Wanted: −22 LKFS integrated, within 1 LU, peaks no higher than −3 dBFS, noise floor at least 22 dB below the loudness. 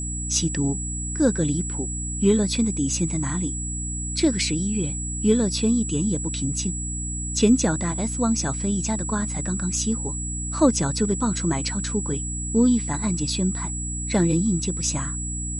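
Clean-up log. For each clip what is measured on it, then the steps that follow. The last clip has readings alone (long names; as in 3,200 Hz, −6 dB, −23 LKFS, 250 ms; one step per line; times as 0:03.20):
mains hum 60 Hz; hum harmonics up to 300 Hz; level of the hum −29 dBFS; interfering tone 7,800 Hz; level of the tone −30 dBFS; integrated loudness −23.5 LKFS; sample peak −6.0 dBFS; target loudness −22.0 LKFS
→ mains-hum notches 60/120/180/240/300 Hz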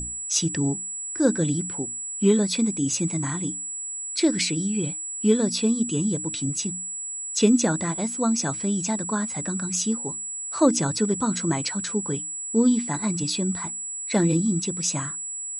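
mains hum none found; interfering tone 7,800 Hz; level of the tone −30 dBFS
→ notch filter 7,800 Hz, Q 30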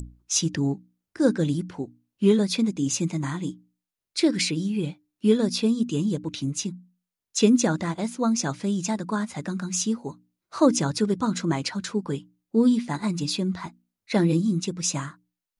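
interfering tone none found; integrated loudness −25.0 LKFS; sample peak −6.5 dBFS; target loudness −22.0 LKFS
→ level +3 dB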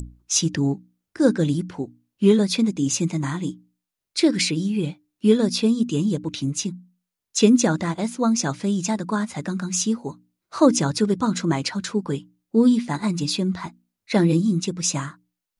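integrated loudness −22.0 LKFS; sample peak −3.5 dBFS; background noise floor −85 dBFS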